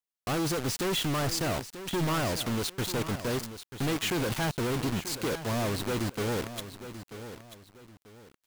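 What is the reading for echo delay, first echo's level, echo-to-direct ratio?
938 ms, −12.0 dB, −11.5 dB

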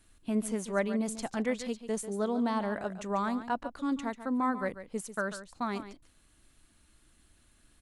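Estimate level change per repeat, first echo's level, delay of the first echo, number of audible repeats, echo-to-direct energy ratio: repeats not evenly spaced, −12.0 dB, 142 ms, 1, −12.0 dB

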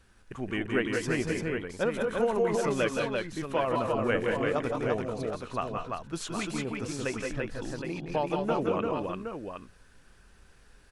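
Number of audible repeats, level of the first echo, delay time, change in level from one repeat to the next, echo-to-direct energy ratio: 3, −6.5 dB, 168 ms, repeats not evenly spaced, 0.5 dB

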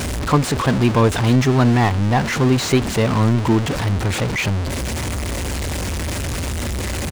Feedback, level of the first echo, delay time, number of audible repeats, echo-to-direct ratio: 24%, −22.5 dB, 613 ms, 1, −22.5 dB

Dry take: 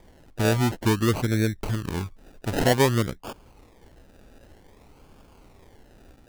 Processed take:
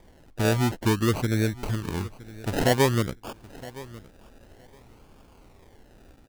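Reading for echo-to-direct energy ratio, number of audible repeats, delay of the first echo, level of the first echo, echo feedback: −19.0 dB, 2, 966 ms, −19.0 dB, 17%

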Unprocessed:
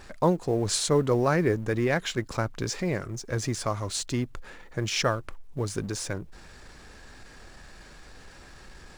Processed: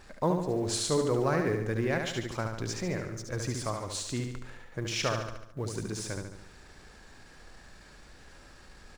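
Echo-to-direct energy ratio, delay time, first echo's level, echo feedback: −3.5 dB, 72 ms, −5.0 dB, 53%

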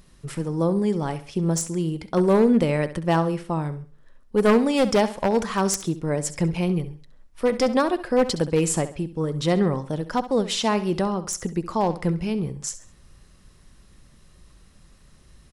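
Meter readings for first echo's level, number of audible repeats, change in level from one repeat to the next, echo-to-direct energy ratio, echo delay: −14.0 dB, 3, −9.0 dB, −13.5 dB, 67 ms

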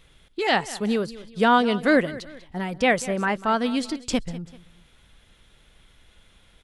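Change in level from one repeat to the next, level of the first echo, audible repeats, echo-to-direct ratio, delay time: −8.0 dB, −17.5 dB, 2, −17.0 dB, 194 ms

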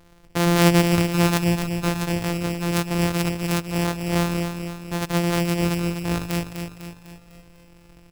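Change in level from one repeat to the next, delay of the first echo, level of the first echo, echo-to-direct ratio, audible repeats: −6.0 dB, 250 ms, −7.0 dB, −5.5 dB, 5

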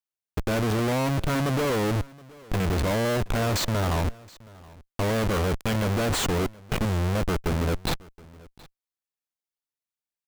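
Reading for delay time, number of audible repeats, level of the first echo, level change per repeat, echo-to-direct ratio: 722 ms, 1, −23.0 dB, repeats not evenly spaced, −23.0 dB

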